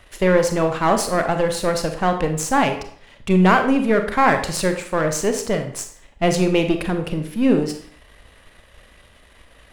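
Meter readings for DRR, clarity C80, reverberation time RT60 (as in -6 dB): 6.0 dB, 12.5 dB, 0.55 s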